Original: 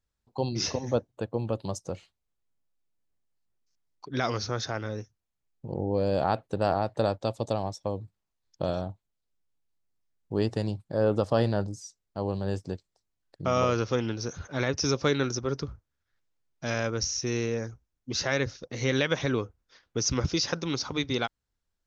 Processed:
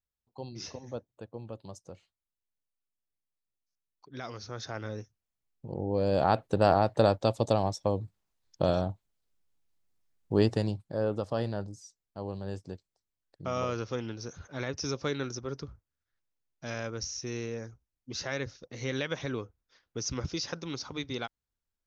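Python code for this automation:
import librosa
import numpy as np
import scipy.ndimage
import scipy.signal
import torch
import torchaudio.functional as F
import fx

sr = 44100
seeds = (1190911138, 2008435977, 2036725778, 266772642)

y = fx.gain(x, sr, db=fx.line((4.37, -12.0), (4.85, -3.5), (5.79, -3.5), (6.47, 3.0), (10.41, 3.0), (11.18, -7.0)))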